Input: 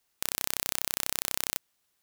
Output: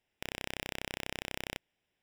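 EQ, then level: Savitzky-Golay filter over 25 samples; peaking EQ 1.2 kHz -14 dB 0.65 oct; +2.5 dB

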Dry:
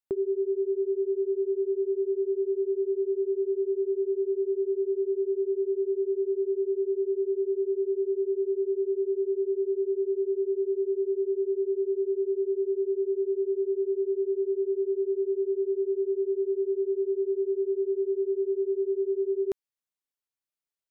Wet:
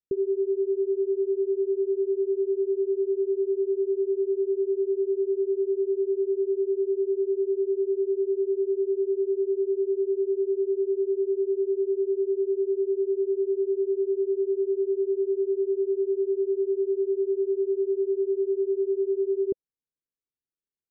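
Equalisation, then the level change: steep low-pass 520 Hz 96 dB/octave; +2.0 dB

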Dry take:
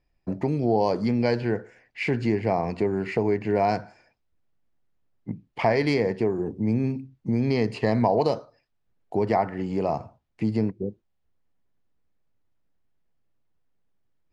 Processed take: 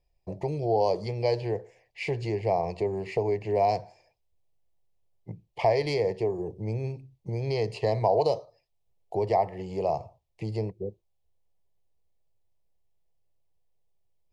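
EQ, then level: static phaser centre 600 Hz, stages 4; 0.0 dB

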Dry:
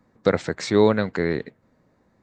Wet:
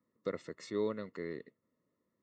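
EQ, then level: boxcar filter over 56 samples; differentiator; +12.5 dB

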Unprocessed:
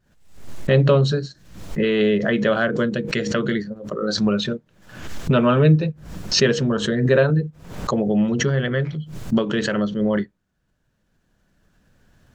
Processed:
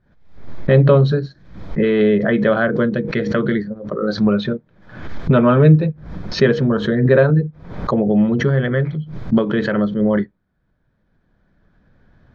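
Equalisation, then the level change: distance through air 300 m; band-stop 2.8 kHz, Q 5.2; +4.5 dB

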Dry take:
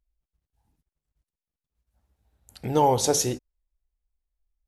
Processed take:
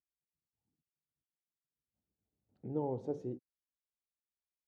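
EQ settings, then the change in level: Butterworth band-pass 210 Hz, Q 0.74; tilt EQ +4 dB/octave; bass shelf 160 Hz +7.5 dB; -5.0 dB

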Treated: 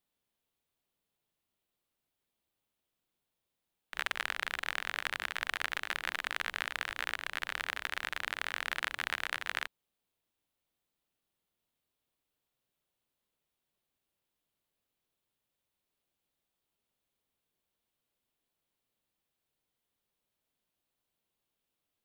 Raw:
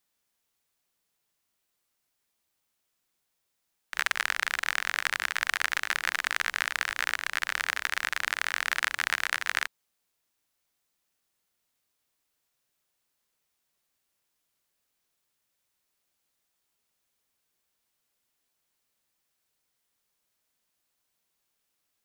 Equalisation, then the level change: peaking EQ 1.9 kHz -9 dB 2.2 oct; resonant high shelf 4.3 kHz -8 dB, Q 1.5; 0.0 dB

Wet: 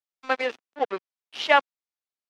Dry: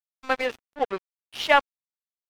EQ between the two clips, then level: three-band isolator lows -20 dB, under 190 Hz, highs -17 dB, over 7.3 kHz; 0.0 dB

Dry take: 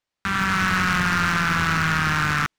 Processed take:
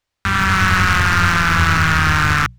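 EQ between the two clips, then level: resonant low shelf 120 Hz +8 dB, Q 1.5; hum notches 60/120/180 Hz; +6.0 dB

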